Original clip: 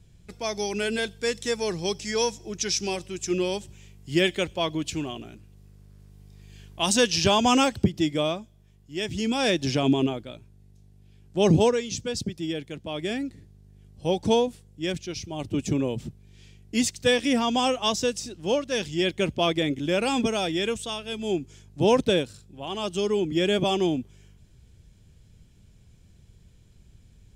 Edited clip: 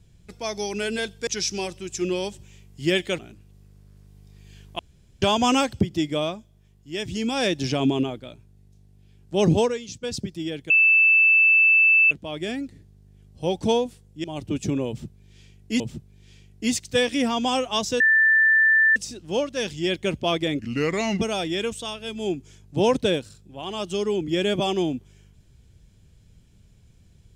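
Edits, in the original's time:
1.27–2.56 s: delete
4.48–5.22 s: delete
6.82–7.25 s: room tone
11.62–12.06 s: fade out, to -10 dB
12.73 s: add tone 2.64 kHz -13 dBFS 1.41 s
14.86–15.27 s: delete
15.91–16.83 s: loop, 2 plays
18.11 s: add tone 1.77 kHz -14 dBFS 0.96 s
19.74–20.25 s: speed 82%

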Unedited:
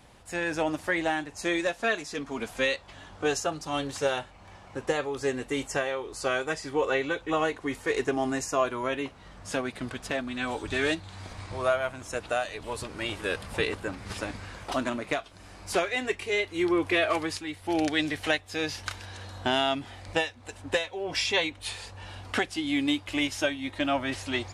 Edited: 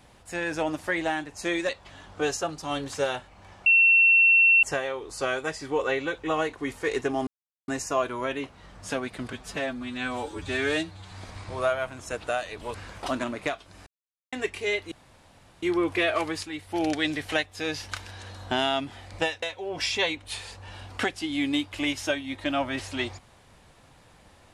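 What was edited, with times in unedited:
1.69–2.72 s: delete
4.69–5.66 s: bleep 2.71 kHz -14.5 dBFS
8.30 s: insert silence 0.41 s
9.95–11.14 s: stretch 1.5×
12.77–14.40 s: delete
15.52–15.98 s: mute
16.57 s: insert room tone 0.71 s
20.37–20.77 s: delete

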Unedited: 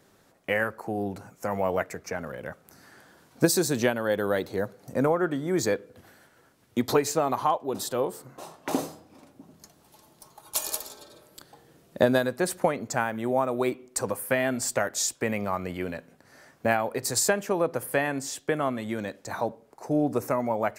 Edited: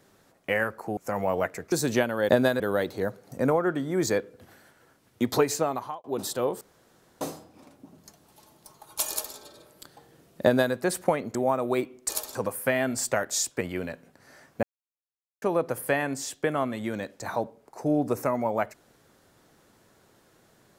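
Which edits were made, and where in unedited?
0.97–1.33 s: delete
2.08–3.59 s: delete
7.13–7.60 s: fade out
8.17–8.77 s: room tone
10.67–10.92 s: copy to 13.99 s
11.99–12.30 s: copy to 4.16 s
12.91–13.24 s: delete
15.25–15.66 s: delete
16.68–17.47 s: mute

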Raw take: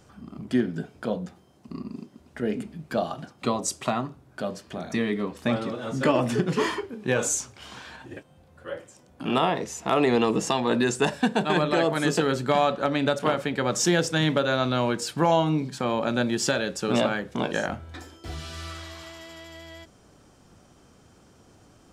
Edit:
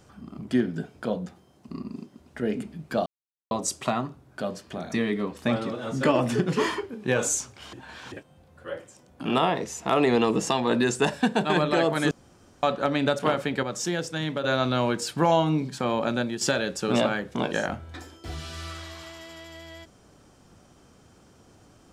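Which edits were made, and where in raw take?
3.06–3.51 s: mute
7.73–8.12 s: reverse
12.11–12.63 s: room tone
13.63–14.44 s: gain -6.5 dB
16.07–16.41 s: fade out, to -8 dB

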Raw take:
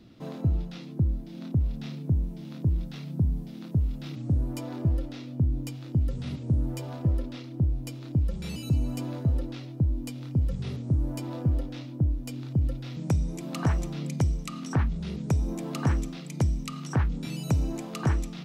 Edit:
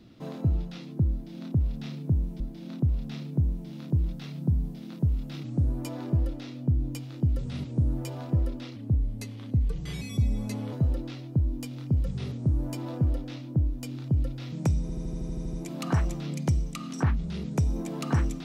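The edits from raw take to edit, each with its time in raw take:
1.12–2.40 s: loop, 2 plays
7.48–9.17 s: speed 86%
13.26 s: stutter 0.08 s, 10 plays

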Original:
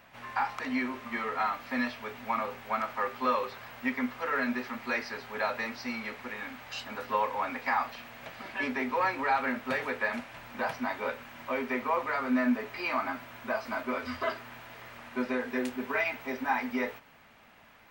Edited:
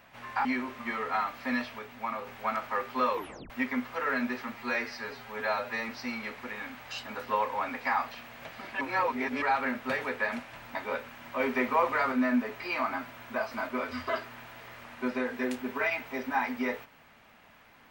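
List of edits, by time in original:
0.45–0.71 s: delete
2.05–2.53 s: gain -3.5 dB
3.40 s: tape stop 0.36 s
4.80–5.70 s: stretch 1.5×
8.62–9.23 s: reverse
10.56–10.89 s: delete
11.54–12.26 s: gain +3.5 dB

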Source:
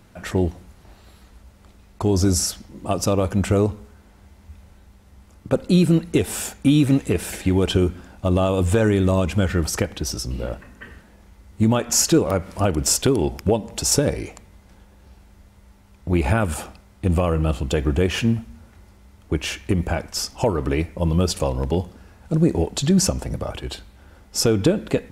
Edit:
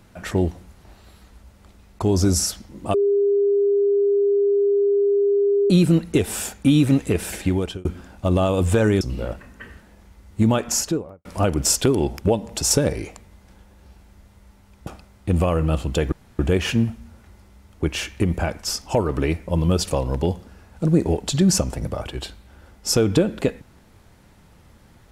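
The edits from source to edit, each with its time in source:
2.94–5.70 s: bleep 403 Hz -15 dBFS
7.44–7.85 s: fade out
9.01–10.22 s: delete
11.80–12.46 s: studio fade out
16.08–16.63 s: delete
17.88 s: insert room tone 0.27 s

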